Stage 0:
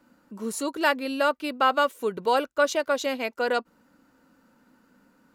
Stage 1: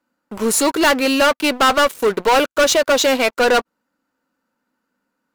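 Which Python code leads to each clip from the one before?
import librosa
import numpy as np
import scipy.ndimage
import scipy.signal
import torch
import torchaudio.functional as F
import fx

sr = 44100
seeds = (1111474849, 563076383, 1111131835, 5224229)

y = fx.low_shelf(x, sr, hz=290.0, db=-9.5)
y = fx.leveller(y, sr, passes=5)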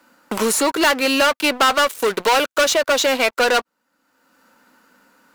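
y = fx.low_shelf(x, sr, hz=450.0, db=-8.0)
y = fx.band_squash(y, sr, depth_pct=70)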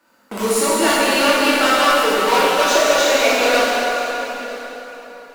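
y = x + 10.0 ** (-19.0 / 20.0) * np.pad(x, (int(960 * sr / 1000.0), 0))[:len(x)]
y = fx.rev_plate(y, sr, seeds[0], rt60_s=3.9, hf_ratio=0.75, predelay_ms=0, drr_db=-9.5)
y = y * 10.0 ** (-7.5 / 20.0)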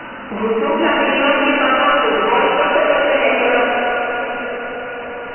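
y = x + 0.5 * 10.0 ** (-23.5 / 20.0) * np.sign(x)
y = fx.brickwall_lowpass(y, sr, high_hz=3000.0)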